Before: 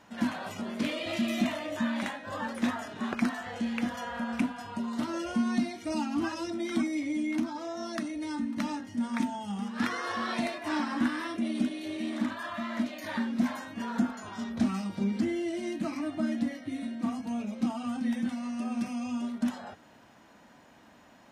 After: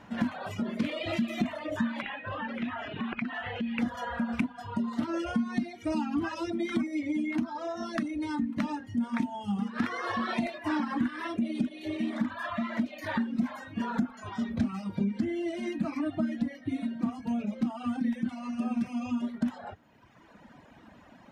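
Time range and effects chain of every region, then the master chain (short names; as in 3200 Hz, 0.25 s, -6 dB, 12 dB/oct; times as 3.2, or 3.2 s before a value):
2.01–3.79 compressor 5:1, threshold -36 dBFS + synth low-pass 2800 Hz, resonance Q 2.7
whole clip: reverb removal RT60 1.4 s; tone controls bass +6 dB, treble -9 dB; compressor 4:1, threshold -31 dBFS; gain +4.5 dB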